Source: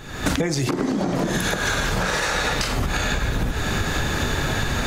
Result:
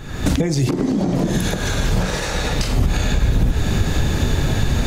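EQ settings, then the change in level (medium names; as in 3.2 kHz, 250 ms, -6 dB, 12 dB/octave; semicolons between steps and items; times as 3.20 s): bass shelf 260 Hz +8.5 dB; dynamic bell 1.4 kHz, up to -6 dB, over -37 dBFS, Q 1.2; 0.0 dB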